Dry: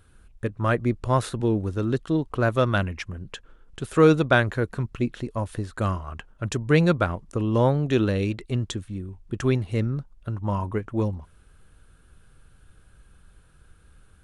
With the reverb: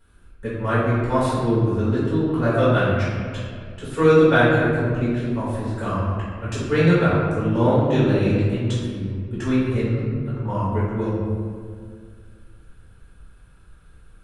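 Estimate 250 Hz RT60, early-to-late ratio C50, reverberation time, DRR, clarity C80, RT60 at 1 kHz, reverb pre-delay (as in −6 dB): 2.4 s, −1.5 dB, 2.1 s, −11.0 dB, 1.0 dB, 1.9 s, 4 ms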